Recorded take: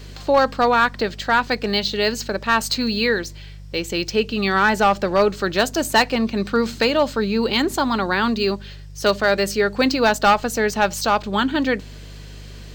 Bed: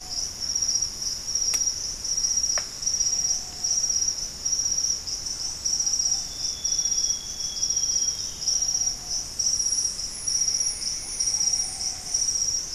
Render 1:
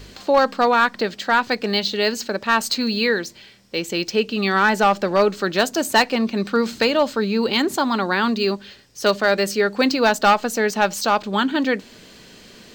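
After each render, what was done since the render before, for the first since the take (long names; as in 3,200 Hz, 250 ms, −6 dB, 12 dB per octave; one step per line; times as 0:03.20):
hum removal 50 Hz, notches 3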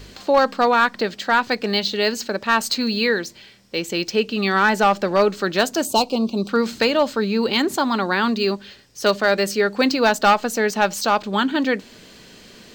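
0:05.85–0:06.49: Butterworth band-reject 1,800 Hz, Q 0.89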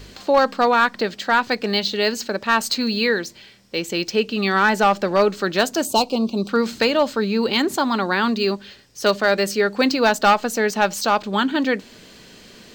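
no processing that can be heard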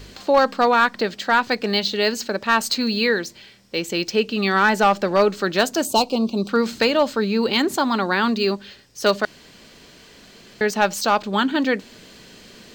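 0:09.25–0:10.61: fill with room tone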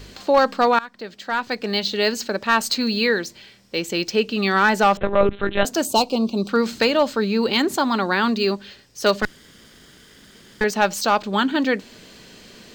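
0:00.79–0:02.01: fade in, from −21.5 dB
0:04.97–0:05.65: one-pitch LPC vocoder at 8 kHz 200 Hz
0:09.22–0:10.64: lower of the sound and its delayed copy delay 0.59 ms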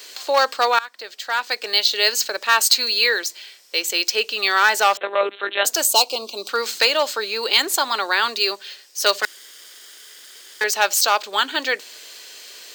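high-pass filter 360 Hz 24 dB per octave
spectral tilt +3.5 dB per octave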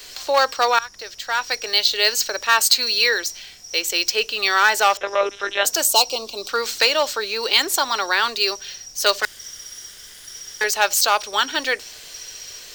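mix in bed −14 dB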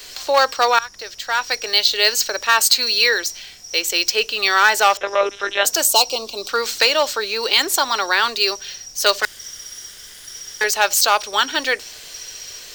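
level +2 dB
brickwall limiter −1 dBFS, peak gain reduction 2 dB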